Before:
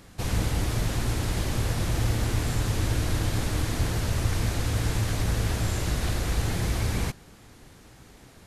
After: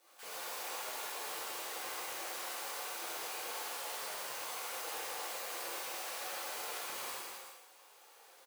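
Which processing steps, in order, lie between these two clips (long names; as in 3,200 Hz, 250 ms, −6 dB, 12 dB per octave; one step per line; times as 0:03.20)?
running median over 25 samples
high-pass filter 160 Hz 6 dB per octave
first difference
brickwall limiter −39 dBFS, peak gain reduction 9 dB
frequency shifter +21 Hz
multi-voice chorus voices 4, 0.74 Hz, delay 12 ms, depth 3.1 ms
auto-filter high-pass saw up 8.7 Hz 420–2,000 Hz
on a send: bouncing-ball delay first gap 160 ms, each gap 0.7×, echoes 5
on the sum: reverb whose tail is shaped and stops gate 160 ms flat, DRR −8 dB
level +6.5 dB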